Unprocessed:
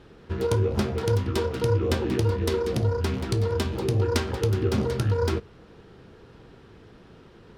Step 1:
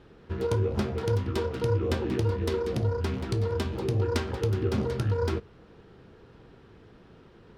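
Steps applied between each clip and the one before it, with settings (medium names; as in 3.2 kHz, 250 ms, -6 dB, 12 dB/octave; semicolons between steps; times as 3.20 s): treble shelf 5 kHz -6 dB; trim -3 dB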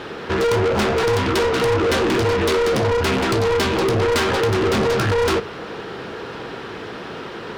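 overdrive pedal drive 32 dB, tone 7.1 kHz, clips at -14 dBFS; trim +2.5 dB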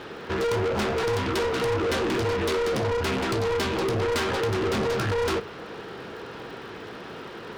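crackle 130 per s -37 dBFS; trim -7 dB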